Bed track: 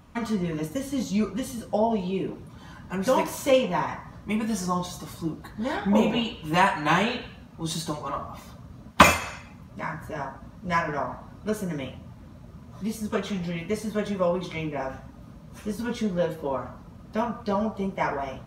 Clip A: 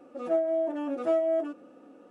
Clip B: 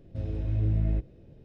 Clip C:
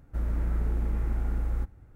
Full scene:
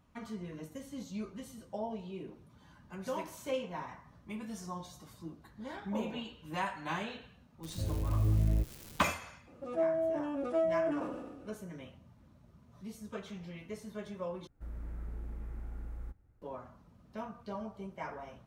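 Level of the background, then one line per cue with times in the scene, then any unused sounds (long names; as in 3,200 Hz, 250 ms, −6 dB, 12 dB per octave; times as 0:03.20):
bed track −15 dB
0:07.63: mix in B −2.5 dB + spike at every zero crossing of −31 dBFS
0:09.47: mix in A −5 dB + level that may fall only so fast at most 39 dB per second
0:14.47: overwrite with C −14 dB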